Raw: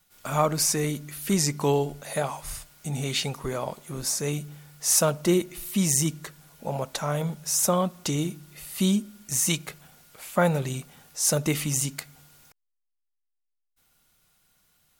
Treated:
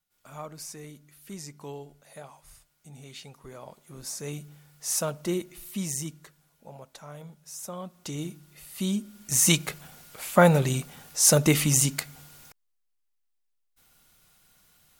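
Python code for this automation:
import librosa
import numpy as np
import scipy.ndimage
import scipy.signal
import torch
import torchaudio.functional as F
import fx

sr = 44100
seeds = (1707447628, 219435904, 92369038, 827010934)

y = fx.gain(x, sr, db=fx.line((3.22, -17.0), (4.32, -7.0), (5.69, -7.0), (6.77, -16.0), (7.68, -16.0), (8.25, -6.0), (8.86, -6.0), (9.49, 4.5)))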